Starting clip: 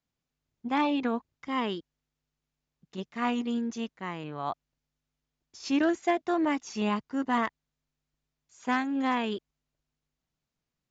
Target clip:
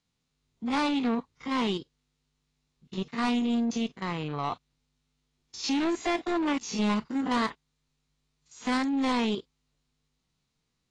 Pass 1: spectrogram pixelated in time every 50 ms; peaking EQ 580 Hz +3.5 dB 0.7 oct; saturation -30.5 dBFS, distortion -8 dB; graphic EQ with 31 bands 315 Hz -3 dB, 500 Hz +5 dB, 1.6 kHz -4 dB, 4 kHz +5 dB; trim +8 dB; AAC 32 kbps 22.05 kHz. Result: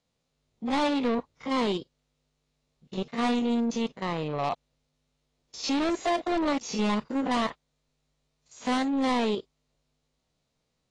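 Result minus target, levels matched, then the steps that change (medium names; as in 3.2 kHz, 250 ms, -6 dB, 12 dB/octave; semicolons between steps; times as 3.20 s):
500 Hz band +3.5 dB
change: peaking EQ 580 Hz -8.5 dB 0.7 oct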